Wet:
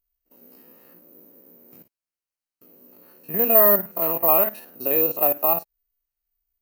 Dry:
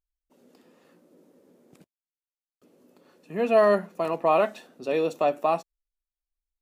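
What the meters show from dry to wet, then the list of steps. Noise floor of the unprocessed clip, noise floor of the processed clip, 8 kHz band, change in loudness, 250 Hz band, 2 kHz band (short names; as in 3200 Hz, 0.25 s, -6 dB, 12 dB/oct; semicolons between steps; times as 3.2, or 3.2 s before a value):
under -85 dBFS, under -85 dBFS, n/a, +7.0 dB, 0.0 dB, -1.5 dB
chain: stepped spectrum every 50 ms; in parallel at +0.5 dB: compressor, threshold -32 dBFS, peak gain reduction 16 dB; on the sum: careless resampling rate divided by 3×, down filtered, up zero stuff; Butterworth band-stop 3500 Hz, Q 7.4; gain -2 dB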